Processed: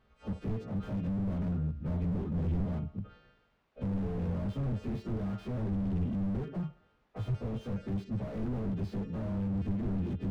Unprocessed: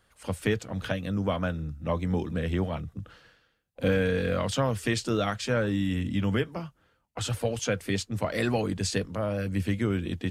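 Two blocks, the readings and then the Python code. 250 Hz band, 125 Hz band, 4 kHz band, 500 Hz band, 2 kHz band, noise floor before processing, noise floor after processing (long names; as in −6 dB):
−3.5 dB, −3.0 dB, below −20 dB, −13.0 dB, −21.0 dB, −69 dBFS, −70 dBFS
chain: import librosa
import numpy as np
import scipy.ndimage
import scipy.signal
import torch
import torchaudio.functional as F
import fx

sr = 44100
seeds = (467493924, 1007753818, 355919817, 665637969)

p1 = fx.freq_snap(x, sr, grid_st=2)
p2 = fx.low_shelf(p1, sr, hz=480.0, db=8.0)
p3 = fx.notch(p2, sr, hz=990.0, q=14.0)
p4 = p3 + 0.38 * np.pad(p3, (int(4.8 * sr / 1000.0), 0))[:len(p3)]
p5 = fx.quant_dither(p4, sr, seeds[0], bits=10, dither='triangular')
p6 = fx.spacing_loss(p5, sr, db_at_10k=45)
p7 = p6 + fx.echo_thinned(p6, sr, ms=68, feedback_pct=50, hz=330.0, wet_db=-17, dry=0)
p8 = fx.slew_limit(p7, sr, full_power_hz=7.7)
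y = p8 * librosa.db_to_amplitude(-3.0)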